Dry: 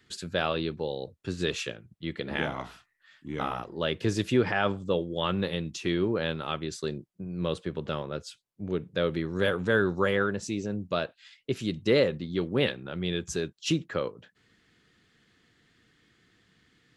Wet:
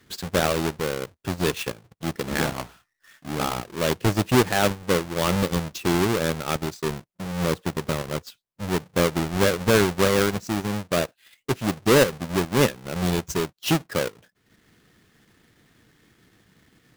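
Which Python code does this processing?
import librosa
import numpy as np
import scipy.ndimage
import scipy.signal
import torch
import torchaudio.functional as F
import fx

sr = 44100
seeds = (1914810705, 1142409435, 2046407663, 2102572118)

y = fx.halfwave_hold(x, sr)
y = fx.transient(y, sr, attack_db=-1, sustain_db=-8)
y = y * librosa.db_to_amplitude(2.0)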